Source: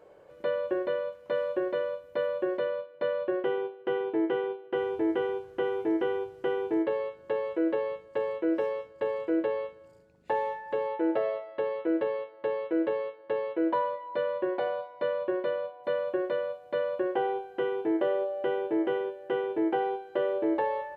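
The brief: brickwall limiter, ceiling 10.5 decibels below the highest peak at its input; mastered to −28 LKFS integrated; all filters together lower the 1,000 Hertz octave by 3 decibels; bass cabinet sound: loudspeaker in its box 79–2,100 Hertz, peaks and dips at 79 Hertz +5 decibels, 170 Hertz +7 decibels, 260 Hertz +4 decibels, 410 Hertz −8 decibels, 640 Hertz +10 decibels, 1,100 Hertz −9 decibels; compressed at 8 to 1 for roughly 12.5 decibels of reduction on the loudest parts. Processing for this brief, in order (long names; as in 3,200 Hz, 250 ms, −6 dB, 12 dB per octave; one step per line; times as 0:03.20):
parametric band 1,000 Hz −4 dB
downward compressor 8 to 1, threshold −37 dBFS
brickwall limiter −35.5 dBFS
loudspeaker in its box 79–2,100 Hz, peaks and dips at 79 Hz +5 dB, 170 Hz +7 dB, 260 Hz +4 dB, 410 Hz −8 dB, 640 Hz +10 dB, 1,100 Hz −9 dB
level +14.5 dB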